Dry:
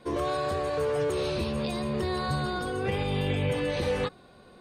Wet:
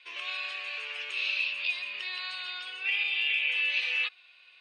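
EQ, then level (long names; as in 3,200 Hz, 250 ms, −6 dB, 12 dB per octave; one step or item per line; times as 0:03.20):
high-pass with resonance 2,600 Hz, resonance Q 7.2
high-frequency loss of the air 140 metres
+1.5 dB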